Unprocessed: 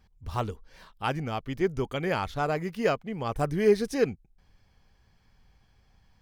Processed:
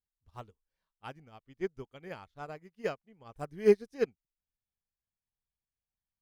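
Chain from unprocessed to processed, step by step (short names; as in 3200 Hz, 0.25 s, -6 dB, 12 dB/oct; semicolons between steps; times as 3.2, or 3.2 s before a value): upward expander 2.5:1, over -40 dBFS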